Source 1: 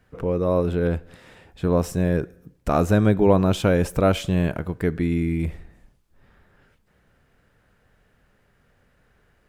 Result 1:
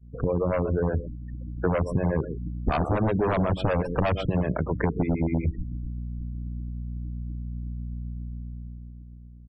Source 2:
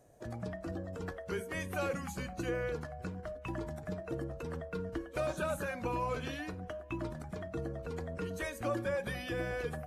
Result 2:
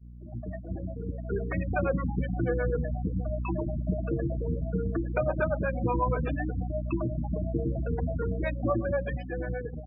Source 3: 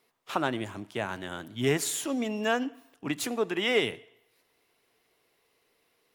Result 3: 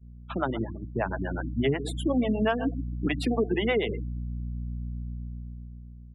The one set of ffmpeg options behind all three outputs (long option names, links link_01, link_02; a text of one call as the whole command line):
ffmpeg -i in.wav -filter_complex "[0:a]equalizer=frequency=6600:width_type=o:width=0.23:gain=-11.5,acrossover=split=130|1800|3400[link_01][link_02][link_03][link_04];[link_02]aecho=1:1:129:0.178[link_05];[link_03]flanger=delay=9:depth=3:regen=-46:speed=0.6:shape=triangular[link_06];[link_04]asoftclip=type=tanh:threshold=-33.5dB[link_07];[link_01][link_05][link_06][link_07]amix=inputs=4:normalize=0,acrossover=split=410[link_08][link_09];[link_08]aeval=exprs='val(0)*(1-1/2+1/2*cos(2*PI*8.2*n/s))':channel_layout=same[link_10];[link_09]aeval=exprs='val(0)*(1-1/2-1/2*cos(2*PI*8.2*n/s))':channel_layout=same[link_11];[link_10][link_11]amix=inputs=2:normalize=0,aeval=exprs='val(0)+0.00631*(sin(2*PI*60*n/s)+sin(2*PI*2*60*n/s)/2+sin(2*PI*3*60*n/s)/3+sin(2*PI*4*60*n/s)/4+sin(2*PI*5*60*n/s)/5)':channel_layout=same,aeval=exprs='0.1*(abs(mod(val(0)/0.1+3,4)-2)-1)':channel_layout=same,afftfilt=real='re*gte(hypot(re,im),0.0141)':imag='im*gte(hypot(re,im),0.0141)':win_size=1024:overlap=0.75,dynaudnorm=framelen=190:gausssize=13:maxgain=6dB,agate=range=-33dB:threshold=-39dB:ratio=3:detection=peak,acompressor=threshold=-28dB:ratio=10,aemphasis=mode=reproduction:type=75fm,volume=6.5dB" out.wav